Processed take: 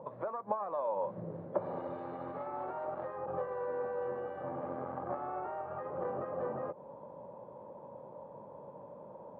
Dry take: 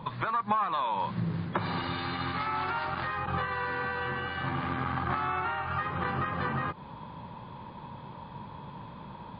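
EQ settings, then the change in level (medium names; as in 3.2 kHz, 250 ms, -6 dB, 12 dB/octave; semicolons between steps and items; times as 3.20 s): high-pass 240 Hz 6 dB/octave; resonant low-pass 560 Hz, resonance Q 4.9; bass shelf 410 Hz -8.5 dB; -2.0 dB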